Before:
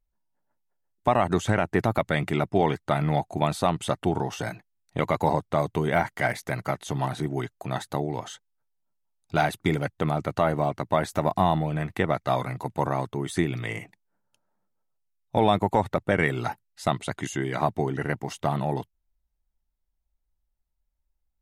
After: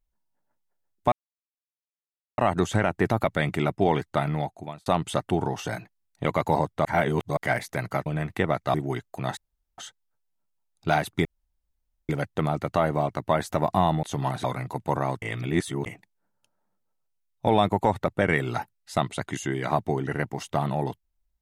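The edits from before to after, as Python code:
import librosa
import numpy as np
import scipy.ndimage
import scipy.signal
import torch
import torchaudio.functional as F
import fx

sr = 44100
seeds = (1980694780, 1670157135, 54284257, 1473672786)

y = fx.edit(x, sr, fx.insert_silence(at_s=1.12, length_s=1.26),
    fx.fade_out_span(start_s=2.88, length_s=0.72),
    fx.reverse_span(start_s=5.59, length_s=0.52),
    fx.swap(start_s=6.8, length_s=0.41, other_s=11.66, other_length_s=0.68),
    fx.room_tone_fill(start_s=7.84, length_s=0.41),
    fx.insert_room_tone(at_s=9.72, length_s=0.84),
    fx.reverse_span(start_s=13.12, length_s=0.64), tone=tone)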